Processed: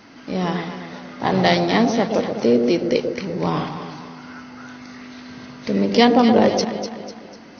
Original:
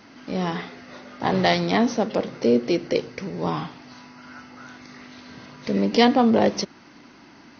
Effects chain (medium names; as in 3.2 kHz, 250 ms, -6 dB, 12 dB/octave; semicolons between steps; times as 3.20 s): 3.12–3.69 s: transient shaper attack +1 dB, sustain +6 dB; echo whose repeats swap between lows and highs 124 ms, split 810 Hz, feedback 66%, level -5.5 dB; trim +2.5 dB